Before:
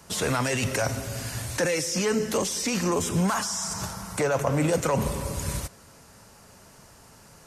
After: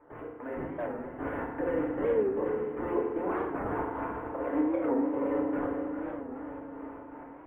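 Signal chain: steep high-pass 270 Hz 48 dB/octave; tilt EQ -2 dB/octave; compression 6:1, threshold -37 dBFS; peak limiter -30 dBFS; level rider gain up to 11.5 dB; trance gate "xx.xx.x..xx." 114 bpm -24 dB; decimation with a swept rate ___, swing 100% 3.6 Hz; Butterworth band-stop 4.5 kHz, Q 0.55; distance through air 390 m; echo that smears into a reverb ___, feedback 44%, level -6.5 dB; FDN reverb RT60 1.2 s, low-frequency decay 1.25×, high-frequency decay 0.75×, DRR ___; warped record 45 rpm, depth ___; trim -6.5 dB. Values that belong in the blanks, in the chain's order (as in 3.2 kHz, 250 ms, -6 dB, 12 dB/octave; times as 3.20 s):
13×, 469 ms, -3 dB, 160 cents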